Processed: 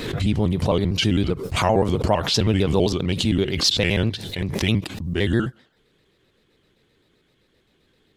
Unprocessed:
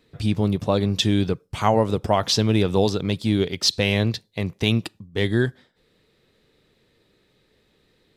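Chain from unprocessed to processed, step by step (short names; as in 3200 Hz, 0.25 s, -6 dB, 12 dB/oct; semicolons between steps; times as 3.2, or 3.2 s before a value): trilling pitch shifter -2.5 st, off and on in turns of 65 ms; backwards sustainer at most 48 dB/s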